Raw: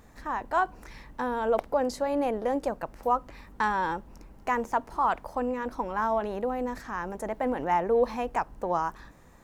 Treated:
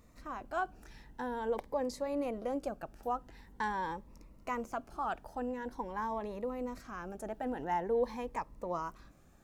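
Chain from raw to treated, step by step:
phaser whose notches keep moving one way rising 0.46 Hz
level −6.5 dB

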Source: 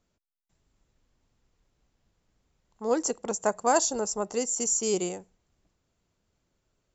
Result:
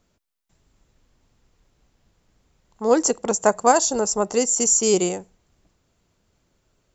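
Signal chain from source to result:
0:03.71–0:04.12: downward compressor 2 to 1, threshold −26 dBFS, peak gain reduction 5 dB
level +8.5 dB

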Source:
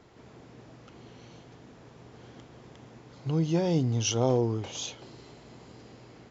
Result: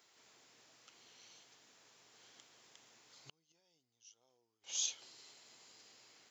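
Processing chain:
gate with flip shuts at −22 dBFS, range −32 dB
first difference
level +3.5 dB

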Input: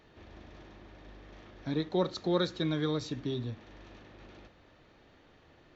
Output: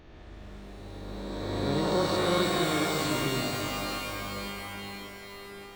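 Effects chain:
peak hold with a rise ahead of every peak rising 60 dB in 2.64 s
low-shelf EQ 64 Hz +9.5 dB
mains-hum notches 60/120 Hz
reverb with rising layers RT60 3.9 s, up +12 semitones, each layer −2 dB, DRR 2.5 dB
level −3 dB

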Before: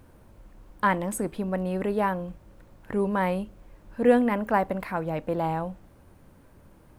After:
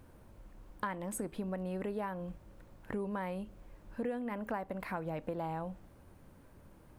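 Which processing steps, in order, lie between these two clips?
downward compressor 8 to 1, threshold −30 dBFS, peak gain reduction 16.5 dB
level −4 dB

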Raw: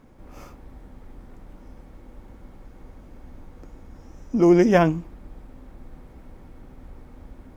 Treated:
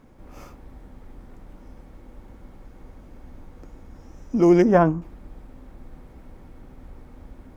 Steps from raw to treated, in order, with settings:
0:04.62–0:05.02: high shelf with overshoot 1,800 Hz −10.5 dB, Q 1.5

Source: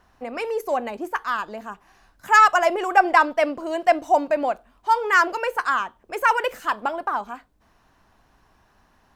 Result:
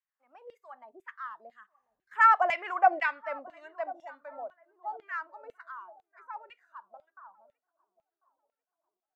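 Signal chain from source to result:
source passing by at 0:02.56, 20 m/s, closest 8.1 metres
feedback echo with a low-pass in the loop 1,044 ms, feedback 60%, low-pass 1,000 Hz, level −17.5 dB
dynamic equaliser 2,100 Hz, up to +5 dB, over −39 dBFS, Q 2.3
auto-filter band-pass saw down 2 Hz 530–2,700 Hz
noise reduction from a noise print of the clip's start 11 dB
level −2 dB

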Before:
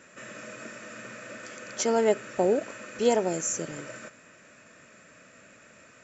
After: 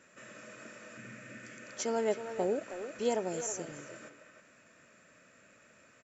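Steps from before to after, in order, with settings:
0:00.97–0:01.64: graphic EQ with 10 bands 125 Hz +9 dB, 250 Hz +5 dB, 500 Hz −3 dB, 1,000 Hz −7 dB, 2,000 Hz +5 dB, 4,000 Hz −4 dB
far-end echo of a speakerphone 320 ms, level −8 dB
level −8 dB

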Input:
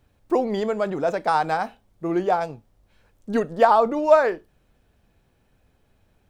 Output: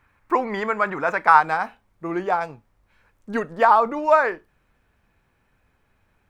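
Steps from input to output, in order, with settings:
flat-topped bell 1,500 Hz +15 dB, from 0:01.39 +8 dB
level −3.5 dB

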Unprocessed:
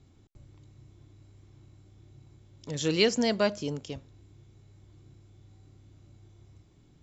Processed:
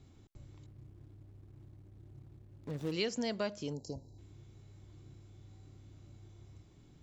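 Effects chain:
0:00.66–0:02.92: running median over 41 samples
0:03.73–0:04.18: gain on a spectral selection 1,000–3,900 Hz −30 dB
downward compressor 2 to 1, threshold −40 dBFS, peak gain reduction 11.5 dB

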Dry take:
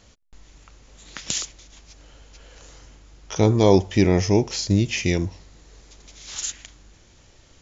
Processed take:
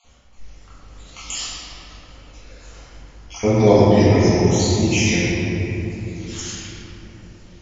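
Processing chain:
time-frequency cells dropped at random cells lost 39%
0:04.42–0:05.20: high-shelf EQ 5,500 Hz +11.5 dB
convolution reverb RT60 3.4 s, pre-delay 4 ms, DRR −11.5 dB
level −5 dB

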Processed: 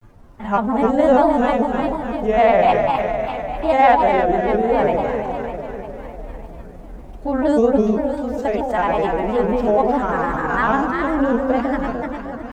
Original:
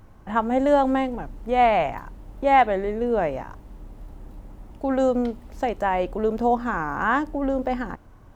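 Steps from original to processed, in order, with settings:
in parallel at −9 dB: soft clipping −15.5 dBFS, distortion −14 dB
on the sum: phase-vocoder stretch with locked phases 1.5×
delay that swaps between a low-pass and a high-pass 152 ms, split 850 Hz, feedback 79%, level −3 dB
granular cloud, spray 14 ms, pitch spread up and down by 3 semitones
level +2 dB

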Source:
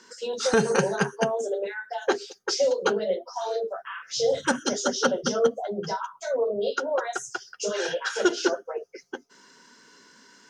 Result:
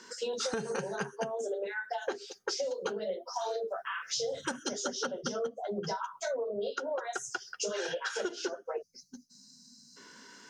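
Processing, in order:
0:02.66–0:04.71: high-shelf EQ 6,800 Hz +5 dB
0:08.82–0:09.97: gain on a spectral selection 260–3,800 Hz −29 dB
downward compressor 12 to 1, threshold −32 dBFS, peak gain reduction 17 dB
level +1 dB

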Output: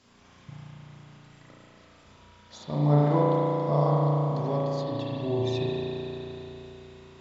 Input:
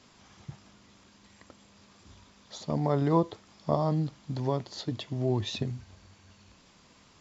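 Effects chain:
0:04.70–0:05.55: flanger swept by the level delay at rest 2.8 ms, full sweep at −23.5 dBFS
spring reverb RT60 3.8 s, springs 34 ms, chirp 65 ms, DRR −7.5 dB
level −4 dB

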